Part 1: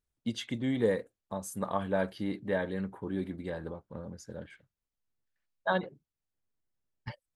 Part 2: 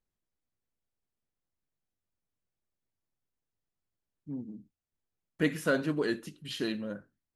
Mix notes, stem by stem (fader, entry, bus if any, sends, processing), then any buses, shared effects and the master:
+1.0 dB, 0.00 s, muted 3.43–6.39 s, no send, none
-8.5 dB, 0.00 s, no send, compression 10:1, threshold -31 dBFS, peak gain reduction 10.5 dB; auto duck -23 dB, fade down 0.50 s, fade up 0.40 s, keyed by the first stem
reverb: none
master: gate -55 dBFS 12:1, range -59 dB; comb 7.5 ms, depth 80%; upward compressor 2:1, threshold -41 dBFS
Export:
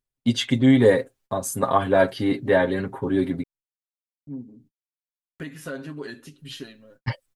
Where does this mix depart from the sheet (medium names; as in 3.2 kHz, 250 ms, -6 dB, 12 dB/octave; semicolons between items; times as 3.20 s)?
stem 1 +1.0 dB -> +10.5 dB; stem 2 -8.5 dB -> -1.0 dB